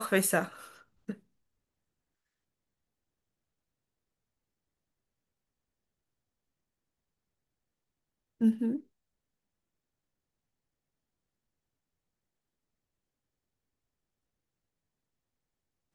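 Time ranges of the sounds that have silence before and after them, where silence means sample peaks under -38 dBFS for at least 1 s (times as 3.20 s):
8.41–8.78 s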